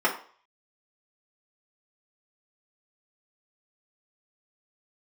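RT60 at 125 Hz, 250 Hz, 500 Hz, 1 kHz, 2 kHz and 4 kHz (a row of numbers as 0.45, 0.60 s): 0.30, 0.40, 0.45, 0.50, 0.45, 0.40 s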